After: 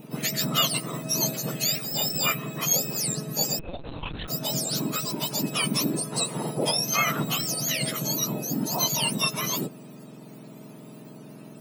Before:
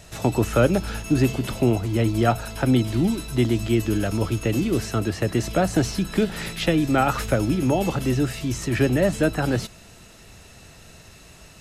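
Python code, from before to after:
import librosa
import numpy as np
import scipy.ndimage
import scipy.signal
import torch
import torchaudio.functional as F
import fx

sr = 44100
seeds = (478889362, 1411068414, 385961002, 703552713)

y = fx.octave_mirror(x, sr, pivot_hz=1300.0)
y = fx.lpc_vocoder(y, sr, seeds[0], excitation='pitch_kept', order=8, at=(3.59, 4.28))
y = fx.transformer_sat(y, sr, knee_hz=300.0)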